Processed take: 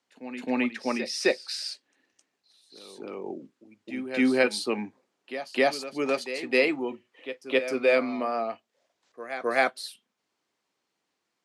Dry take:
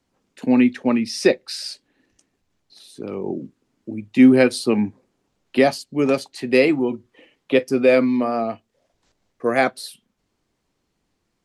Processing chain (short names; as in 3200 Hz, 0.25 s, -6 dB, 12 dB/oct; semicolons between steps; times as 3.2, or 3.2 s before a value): weighting filter A; pre-echo 0.263 s -12 dB; gain -4 dB